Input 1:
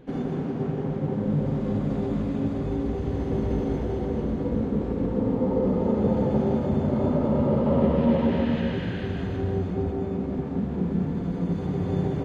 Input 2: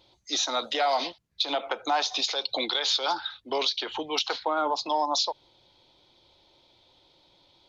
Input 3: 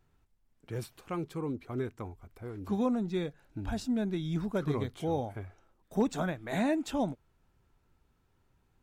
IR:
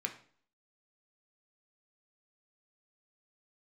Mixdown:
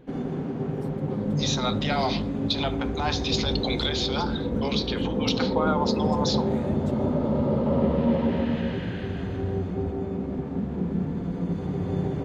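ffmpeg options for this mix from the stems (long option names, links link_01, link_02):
-filter_complex "[0:a]volume=-1.5dB[link_01];[1:a]adelay=1100,volume=-3dB,asplit=2[link_02][link_03];[link_03]volume=-5.5dB[link_04];[2:a]volume=-12dB,asplit=2[link_05][link_06];[link_06]apad=whole_len=387237[link_07];[link_02][link_07]sidechaincompress=threshold=-44dB:ratio=8:attack=16:release=286[link_08];[3:a]atrim=start_sample=2205[link_09];[link_04][link_09]afir=irnorm=-1:irlink=0[link_10];[link_01][link_08][link_05][link_10]amix=inputs=4:normalize=0"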